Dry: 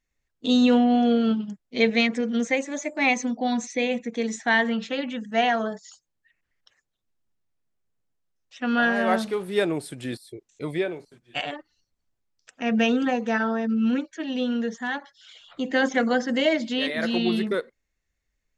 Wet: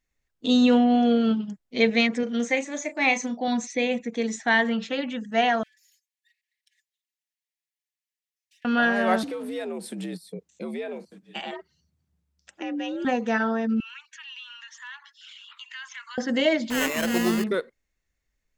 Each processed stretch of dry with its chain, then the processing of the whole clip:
2.23–3.48 s: bass shelf 160 Hz -10.5 dB + doubling 34 ms -10.5 dB
5.63–8.65 s: comb filter that takes the minimum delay 4.7 ms + steep high-pass 1.7 kHz 96 dB/octave + compression 8:1, threshold -60 dBFS
9.23–13.05 s: peaking EQ 99 Hz +13.5 dB 1.3 oct + compression 5:1, threshold -29 dBFS + frequency shift +71 Hz
13.80–16.18 s: steep high-pass 920 Hz 96 dB/octave + peaking EQ 2.7 kHz +10.5 dB 0.3 oct + compression 2.5:1, threshold -42 dBFS
16.70–17.44 s: treble shelf 6.3 kHz +11.5 dB + sample-rate reducer 4.7 kHz
whole clip: none

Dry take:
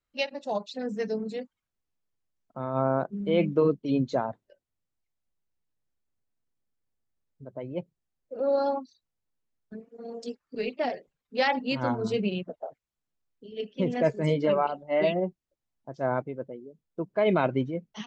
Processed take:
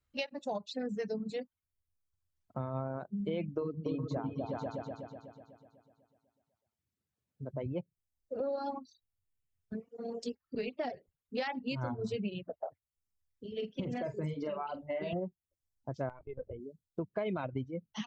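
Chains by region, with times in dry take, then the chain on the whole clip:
3.61–7.66 s: high-pass 120 Hz + delay with an opening low-pass 124 ms, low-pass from 200 Hz, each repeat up 2 oct, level 0 dB
13.57–15.13 s: compression, threshold -29 dBFS + doubling 46 ms -6.5 dB
16.09–16.60 s: high-pass 280 Hz 6 dB/octave + LPC vocoder at 8 kHz pitch kept + compression 2:1, threshold -38 dBFS
whole clip: reverb removal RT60 0.98 s; peaking EQ 87 Hz +14 dB 1.2 oct; compression 6:1, threshold -33 dBFS

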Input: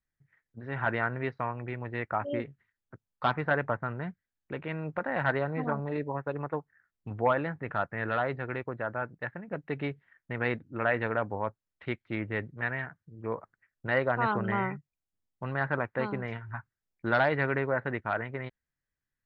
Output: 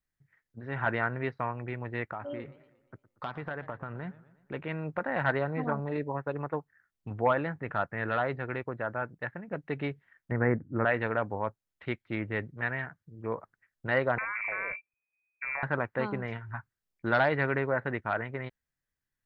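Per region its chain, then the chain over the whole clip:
2.05–4.54 s: compression 4:1, threshold -34 dBFS + modulated delay 118 ms, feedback 50%, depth 173 cents, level -17.5 dB
10.31–10.85 s: steep low-pass 2 kHz 48 dB/octave + bass shelf 490 Hz +7.5 dB
14.18–15.63 s: compression 10:1, threshold -29 dBFS + frequency inversion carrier 2.5 kHz
whole clip: none

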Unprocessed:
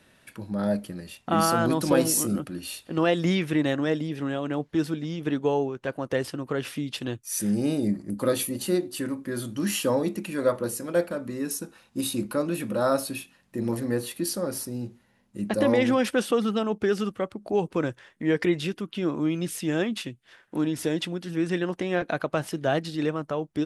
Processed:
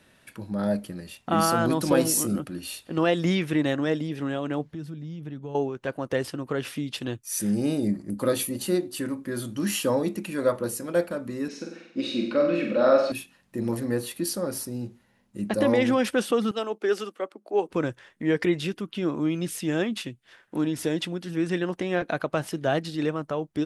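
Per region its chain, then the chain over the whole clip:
4.64–5.55 s: peaking EQ 140 Hz +13 dB 1.3 oct + compression 2:1, threshold -46 dBFS
11.48–13.12 s: cabinet simulation 240–4800 Hz, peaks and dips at 240 Hz +6 dB, 560 Hz +5 dB, 940 Hz -6 dB, 2.2 kHz +8 dB + flutter echo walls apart 8 m, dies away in 0.66 s
16.51–17.69 s: high-pass 290 Hz 24 dB/octave + three bands expanded up and down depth 70%
whole clip: none

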